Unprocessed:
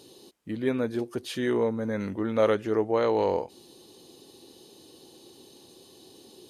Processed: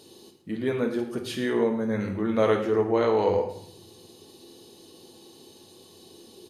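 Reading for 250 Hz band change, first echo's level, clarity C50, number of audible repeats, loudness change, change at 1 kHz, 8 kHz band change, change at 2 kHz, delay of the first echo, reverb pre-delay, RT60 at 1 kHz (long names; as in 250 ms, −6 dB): +2.0 dB, −15.5 dB, 8.0 dB, 1, +1.5 dB, +1.5 dB, can't be measured, +2.0 dB, 111 ms, 3 ms, 0.65 s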